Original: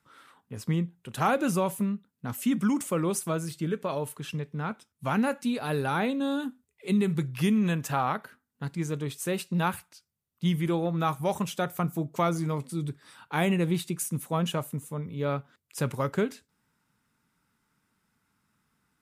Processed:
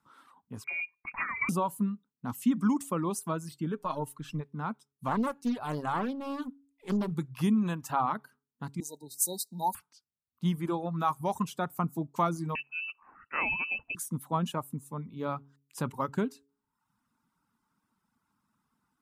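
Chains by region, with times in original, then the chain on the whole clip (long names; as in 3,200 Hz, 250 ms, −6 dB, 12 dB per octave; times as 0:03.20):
0:00.64–0:01.49: compressor whose output falls as the input rises −27 dBFS, ratio −0.5 + hollow resonant body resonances 390/620 Hz, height 16 dB, ringing for 60 ms + voice inversion scrambler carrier 2,600 Hz
0:03.77–0:04.41: gain on one half-wave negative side −3 dB + comb filter 6.5 ms, depth 47%
0:05.08–0:07.12: gain on one half-wave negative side −3 dB + highs frequency-modulated by the lows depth 0.83 ms
0:08.80–0:09.75: linear-phase brick-wall band-stop 960–3,700 Hz + spectral tilt +4 dB per octave + multiband upward and downward expander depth 70%
0:12.55–0:13.95: low-shelf EQ 110 Hz +9.5 dB + voice inversion scrambler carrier 2,800 Hz
whole clip: hum removal 139.3 Hz, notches 3; reverb reduction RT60 0.73 s; graphic EQ with 10 bands 250 Hz +7 dB, 500 Hz −4 dB, 1,000 Hz +10 dB, 2,000 Hz −5 dB; level −5.5 dB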